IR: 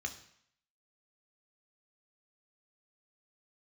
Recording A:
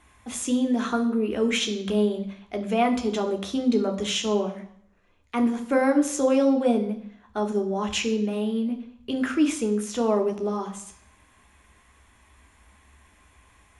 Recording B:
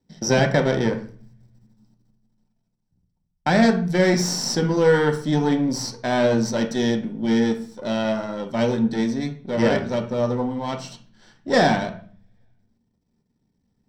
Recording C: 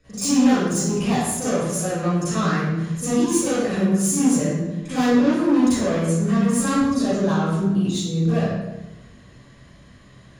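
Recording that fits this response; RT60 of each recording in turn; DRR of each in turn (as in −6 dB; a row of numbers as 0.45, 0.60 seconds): A; 0.65, 0.45, 1.1 seconds; 4.5, 3.0, −15.5 decibels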